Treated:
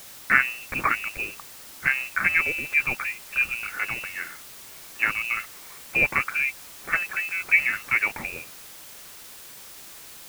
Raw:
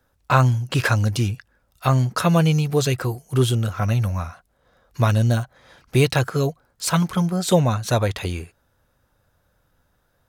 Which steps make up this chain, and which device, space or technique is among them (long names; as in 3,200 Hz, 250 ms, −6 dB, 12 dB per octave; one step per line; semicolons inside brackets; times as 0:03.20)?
scrambled radio voice (band-pass filter 330–2,900 Hz; voice inversion scrambler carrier 2,800 Hz; white noise bed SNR 16 dB)